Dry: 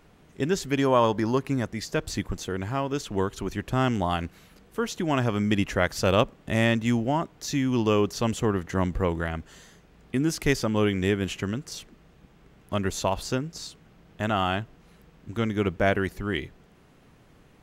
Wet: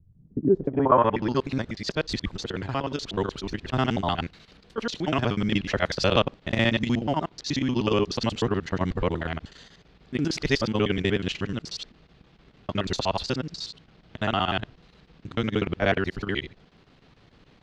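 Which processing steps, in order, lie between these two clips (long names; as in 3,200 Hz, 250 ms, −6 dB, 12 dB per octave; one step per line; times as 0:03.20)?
reversed piece by piece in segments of 61 ms
low-pass filter sweep 110 Hz → 4,300 Hz, 0:00.12–0:01.34
square-wave tremolo 6.7 Hz, depth 65%, duty 85%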